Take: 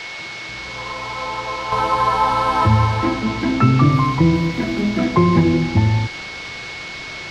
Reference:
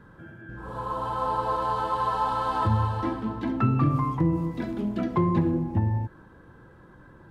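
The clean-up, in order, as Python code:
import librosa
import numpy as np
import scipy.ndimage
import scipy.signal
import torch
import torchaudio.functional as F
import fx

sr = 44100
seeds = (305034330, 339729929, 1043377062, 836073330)

y = fx.notch(x, sr, hz=2200.0, q=30.0)
y = fx.noise_reduce(y, sr, print_start_s=0.0, print_end_s=0.5, reduce_db=20.0)
y = fx.fix_level(y, sr, at_s=1.72, step_db=-9.0)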